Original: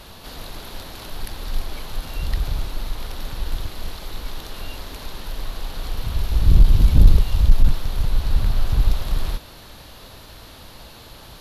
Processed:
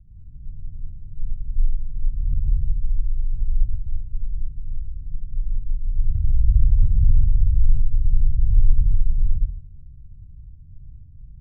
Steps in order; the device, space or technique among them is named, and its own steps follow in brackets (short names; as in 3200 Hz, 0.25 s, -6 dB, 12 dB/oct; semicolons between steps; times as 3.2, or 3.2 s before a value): club heard from the street (limiter -14 dBFS, peak gain reduction 12 dB; LPF 140 Hz 24 dB/oct; reverb RT60 0.55 s, pre-delay 55 ms, DRR -3.5 dB); gain -2.5 dB